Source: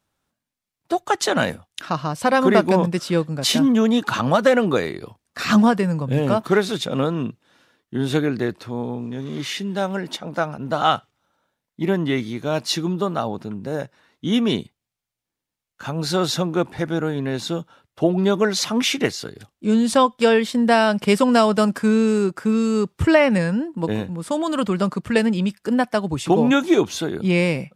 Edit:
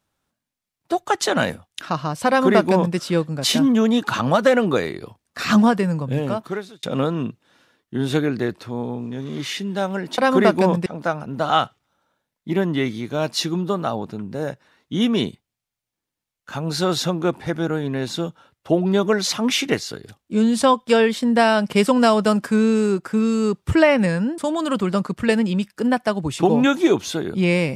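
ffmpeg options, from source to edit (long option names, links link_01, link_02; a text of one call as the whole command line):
ffmpeg -i in.wav -filter_complex "[0:a]asplit=5[link_01][link_02][link_03][link_04][link_05];[link_01]atrim=end=6.83,asetpts=PTS-STARTPTS,afade=type=out:start_time=5.95:duration=0.88[link_06];[link_02]atrim=start=6.83:end=10.182,asetpts=PTS-STARTPTS,afade=type=in:duration=0.004:curve=hsin[link_07];[link_03]atrim=start=2.278:end=2.962[link_08];[link_04]atrim=start=10.178:end=23.702[link_09];[link_05]atrim=start=24.248[link_10];[link_06][link_07]concat=n=2:v=0:a=1[link_11];[link_11][link_08]acrossfade=duration=0.004:curve1=hsin:curve2=hsin[link_12];[link_12][link_09]acrossfade=duration=0.004:curve1=hsin:curve2=hsin[link_13];[link_13][link_10]acrossfade=duration=0.004:curve1=hsin:curve2=hsin" out.wav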